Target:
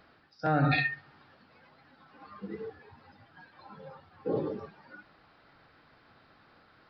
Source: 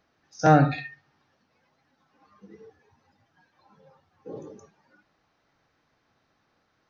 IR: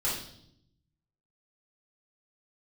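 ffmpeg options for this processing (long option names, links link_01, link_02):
-af "equalizer=frequency=1400:width=3.3:gain=4,areverse,acompressor=threshold=-32dB:ratio=16,areverse,aresample=11025,aresample=44100,volume=9dB"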